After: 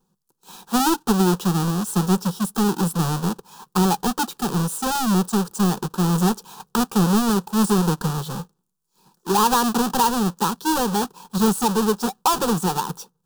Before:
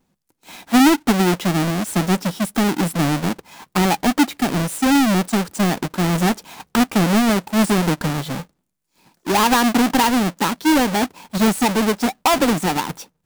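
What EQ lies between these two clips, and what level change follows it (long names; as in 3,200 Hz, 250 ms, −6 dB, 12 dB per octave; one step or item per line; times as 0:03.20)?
phaser with its sweep stopped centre 420 Hz, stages 8
0.0 dB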